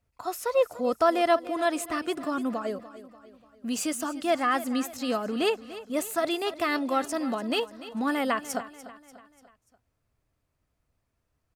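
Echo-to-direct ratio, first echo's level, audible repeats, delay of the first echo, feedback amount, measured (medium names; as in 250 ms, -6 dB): -14.5 dB, -15.5 dB, 4, 293 ms, 49%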